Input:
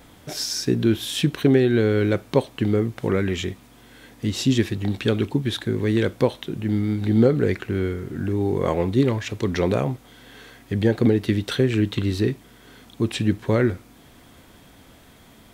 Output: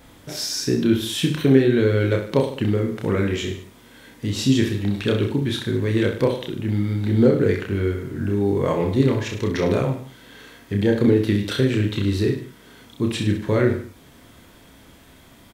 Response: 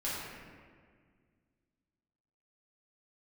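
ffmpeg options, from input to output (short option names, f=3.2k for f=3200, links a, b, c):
-filter_complex "[0:a]bandreject=f=750:w=14,asplit=2[a][b];[b]aecho=0:1:30|64.5|104.2|149.8|202.3:0.631|0.398|0.251|0.158|0.1[c];[a][c]amix=inputs=2:normalize=0,volume=-1dB"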